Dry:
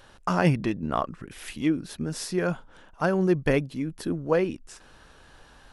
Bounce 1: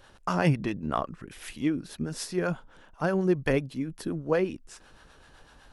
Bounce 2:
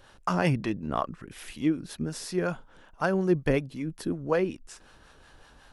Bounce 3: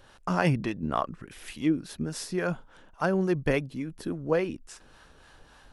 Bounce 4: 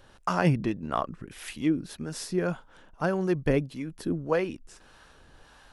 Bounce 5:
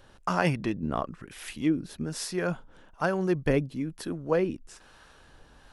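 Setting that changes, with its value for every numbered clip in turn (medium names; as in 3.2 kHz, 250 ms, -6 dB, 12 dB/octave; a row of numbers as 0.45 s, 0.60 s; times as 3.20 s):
harmonic tremolo, rate: 7.9 Hz, 5.4 Hz, 3.5 Hz, 1.7 Hz, 1.1 Hz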